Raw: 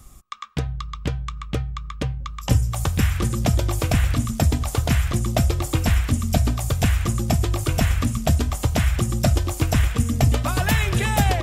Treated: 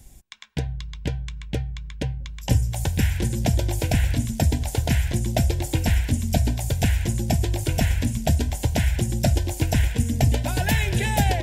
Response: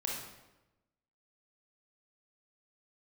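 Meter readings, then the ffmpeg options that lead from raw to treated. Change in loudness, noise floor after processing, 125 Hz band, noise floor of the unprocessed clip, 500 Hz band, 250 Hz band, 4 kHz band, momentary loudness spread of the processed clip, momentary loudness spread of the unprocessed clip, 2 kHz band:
-1.5 dB, -37 dBFS, -1.5 dB, -35 dBFS, -1.5 dB, -1.5 dB, -1.5 dB, 9 LU, 9 LU, -2.0 dB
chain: -af "asuperstop=centerf=1200:order=4:qfactor=2.5,volume=0.841"

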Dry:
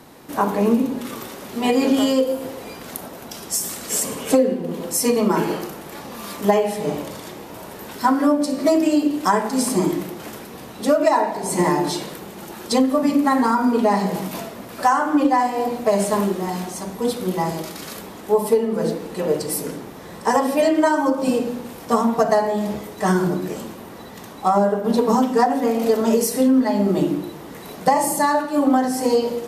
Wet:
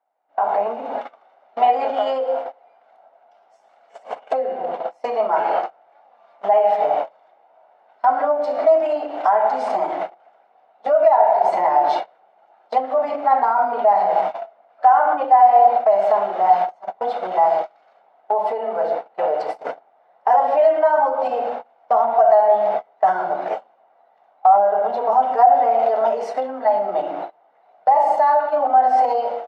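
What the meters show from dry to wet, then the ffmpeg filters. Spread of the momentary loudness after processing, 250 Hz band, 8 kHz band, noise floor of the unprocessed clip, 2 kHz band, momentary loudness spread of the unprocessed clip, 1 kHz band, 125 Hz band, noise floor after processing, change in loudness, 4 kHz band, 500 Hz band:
14 LU, -20.0 dB, under -25 dB, -38 dBFS, -3.5 dB, 16 LU, +7.0 dB, under -20 dB, -58 dBFS, +2.0 dB, under -10 dB, +2.0 dB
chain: -af "lowpass=2600,aemphasis=mode=reproduction:type=50fm,agate=range=0.0178:threshold=0.0501:ratio=16:detection=peak,aecho=1:1:1.4:0.34,acompressor=threshold=0.0398:ratio=12,alimiter=level_in=1.26:limit=0.0631:level=0:latency=1:release=20,volume=0.794,dynaudnorm=f=160:g=5:m=3.55,highpass=f=710:t=q:w=4.9"

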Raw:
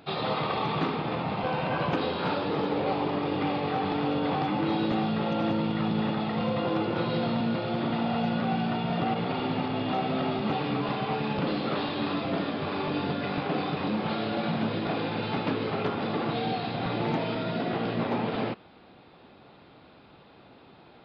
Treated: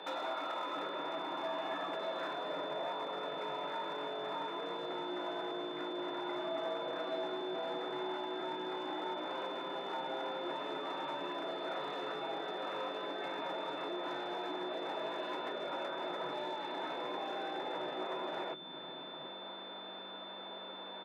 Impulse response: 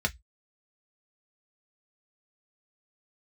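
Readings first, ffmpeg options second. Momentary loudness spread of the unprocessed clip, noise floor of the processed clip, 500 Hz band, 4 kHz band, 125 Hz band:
3 LU, -47 dBFS, -8.0 dB, -5.0 dB, -28.0 dB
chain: -filter_complex "[0:a]lowshelf=f=92:g=-11,acompressor=threshold=0.00891:ratio=10,bass=f=250:g=-1,treble=f=4000:g=-14,aeval=exprs='val(0)+0.000891*(sin(2*PI*50*n/s)+sin(2*PI*2*50*n/s)/2+sin(2*PI*3*50*n/s)/3+sin(2*PI*4*50*n/s)/4+sin(2*PI*5*50*n/s)/5)':c=same,aeval=exprs='0.0112*(abs(mod(val(0)/0.0112+3,4)-2)-1)':c=same,aeval=exprs='val(0)+0.00398*sin(2*PI*3400*n/s)':c=same,afreqshift=140,acrossover=split=240[s0][s1];[s0]adelay=750[s2];[s2][s1]amix=inputs=2:normalize=0,asplit=2[s3][s4];[1:a]atrim=start_sample=2205[s5];[s4][s5]afir=irnorm=-1:irlink=0,volume=0.316[s6];[s3][s6]amix=inputs=2:normalize=0,volume=1.41"

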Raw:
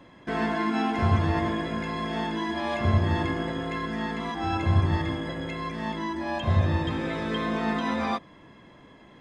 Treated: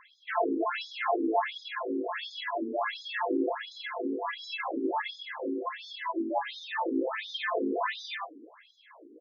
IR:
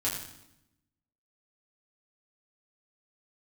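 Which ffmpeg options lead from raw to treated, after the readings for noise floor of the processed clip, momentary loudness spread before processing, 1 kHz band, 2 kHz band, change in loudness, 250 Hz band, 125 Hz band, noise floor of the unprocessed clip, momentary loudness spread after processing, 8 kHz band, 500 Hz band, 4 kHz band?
-58 dBFS, 8 LU, -2.5 dB, -2.5 dB, -5.0 dB, -5.5 dB, under -40 dB, -52 dBFS, 7 LU, no reading, -0.5 dB, -1.5 dB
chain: -filter_complex "[0:a]highpass=150,asplit=2[s0][s1];[s1]adelay=29,volume=0.237[s2];[s0][s2]amix=inputs=2:normalize=0,aecho=1:1:89:0.2,asplit=2[s3][s4];[1:a]atrim=start_sample=2205,lowpass=3900[s5];[s4][s5]afir=irnorm=-1:irlink=0,volume=0.133[s6];[s3][s6]amix=inputs=2:normalize=0,afftfilt=real='re*between(b*sr/1024,320*pow(4800/320,0.5+0.5*sin(2*PI*1.4*pts/sr))/1.41,320*pow(4800/320,0.5+0.5*sin(2*PI*1.4*pts/sr))*1.41)':imag='im*between(b*sr/1024,320*pow(4800/320,0.5+0.5*sin(2*PI*1.4*pts/sr))/1.41,320*pow(4800/320,0.5+0.5*sin(2*PI*1.4*pts/sr))*1.41)':win_size=1024:overlap=0.75,volume=1.58"

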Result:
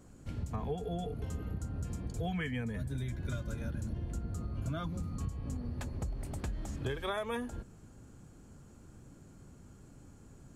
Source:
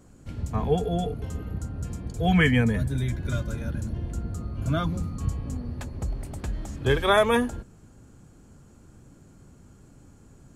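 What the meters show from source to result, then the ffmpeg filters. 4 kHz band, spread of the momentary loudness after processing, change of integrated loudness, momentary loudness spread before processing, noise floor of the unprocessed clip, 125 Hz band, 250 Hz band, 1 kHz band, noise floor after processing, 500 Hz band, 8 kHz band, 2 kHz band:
-14.0 dB, 20 LU, -11.5 dB, 14 LU, -53 dBFS, -9.5 dB, -12.0 dB, -14.0 dB, -56 dBFS, -14.0 dB, -8.0 dB, -15.5 dB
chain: -af "acompressor=threshold=0.0316:ratio=8,volume=0.708"

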